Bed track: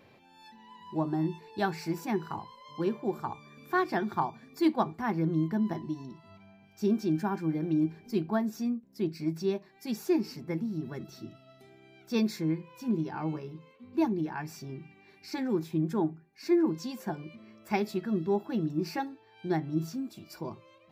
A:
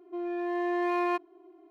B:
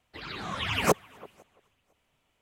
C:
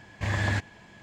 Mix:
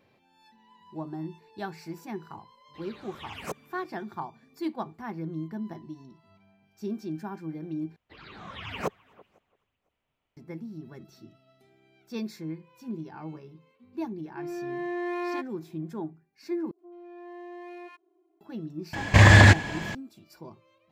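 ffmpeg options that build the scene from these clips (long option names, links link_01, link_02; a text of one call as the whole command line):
ffmpeg -i bed.wav -i cue0.wav -i cue1.wav -i cue2.wav -filter_complex "[2:a]asplit=2[link_01][link_02];[1:a]asplit=2[link_03][link_04];[0:a]volume=-6.5dB[link_05];[link_02]equalizer=frequency=10000:width_type=o:width=1.4:gain=-14[link_06];[link_03]aecho=1:1:3.4:0.32[link_07];[link_04]acrossover=split=1100[link_08][link_09];[link_09]adelay=80[link_10];[link_08][link_10]amix=inputs=2:normalize=0[link_11];[3:a]alimiter=level_in=20.5dB:limit=-1dB:release=50:level=0:latency=1[link_12];[link_05]asplit=3[link_13][link_14][link_15];[link_13]atrim=end=7.964[link_16];[link_06]atrim=end=2.41,asetpts=PTS-STARTPTS,volume=-7.5dB[link_17];[link_14]atrim=start=10.366:end=16.714[link_18];[link_11]atrim=end=1.7,asetpts=PTS-STARTPTS,volume=-13.5dB[link_19];[link_15]atrim=start=18.406[link_20];[link_01]atrim=end=2.41,asetpts=PTS-STARTPTS,volume=-13dB,afade=type=in:duration=0.004:curve=hsin,afade=type=out:start_time=2.406:duration=0.004:curve=hsin,adelay=2600[link_21];[link_07]atrim=end=1.7,asetpts=PTS-STARTPTS,volume=-3.5dB,afade=type=in:duration=0.004:curve=hsin,afade=type=out:start_time=1.696:duration=0.004:curve=hsin,adelay=14240[link_22];[link_12]atrim=end=1.02,asetpts=PTS-STARTPTS,volume=-3.5dB,afade=type=in:duration=0.004:curve=hsin,afade=type=out:start_time=1.016:duration=0.004:curve=hsin,adelay=18930[link_23];[link_16][link_17]acrossfade=duration=0.004:curve1=hsin:curve2=hsin[link_24];[link_24][link_18]acrossfade=duration=0.004:curve1=hsin:curve2=hsin[link_25];[link_25][link_19]acrossfade=duration=0.004:curve1=hsin:curve2=hsin[link_26];[link_26][link_20]acrossfade=duration=0.004:curve1=hsin:curve2=hsin[link_27];[link_27][link_21][link_22][link_23]amix=inputs=4:normalize=0" out.wav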